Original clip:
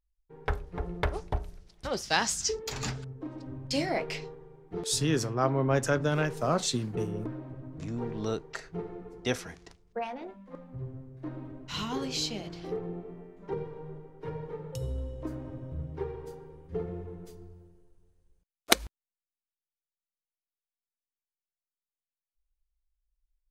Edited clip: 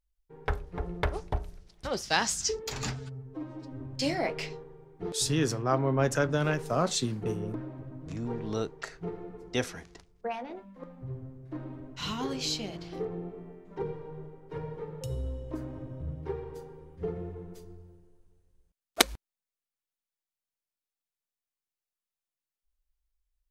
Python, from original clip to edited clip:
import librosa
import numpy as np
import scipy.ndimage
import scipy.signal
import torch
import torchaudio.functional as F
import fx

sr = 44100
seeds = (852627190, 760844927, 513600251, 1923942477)

y = fx.edit(x, sr, fx.stretch_span(start_s=2.95, length_s=0.57, factor=1.5), tone=tone)